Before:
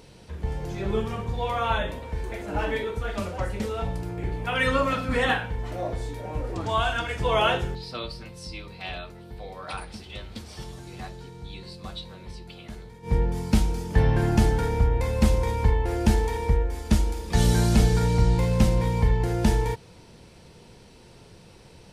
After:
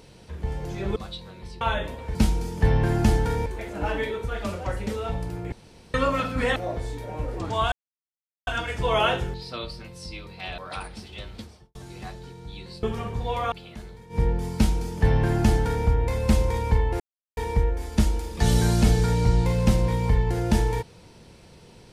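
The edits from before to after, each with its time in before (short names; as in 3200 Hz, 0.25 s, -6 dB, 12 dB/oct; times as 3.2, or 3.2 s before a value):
0.96–1.65 swap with 11.8–12.45
4.25–4.67 room tone
5.29–5.72 cut
6.88 insert silence 0.75 s
8.99–9.55 cut
10.3–10.72 studio fade out
13.48–14.79 copy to 2.19
15.93–16.3 mute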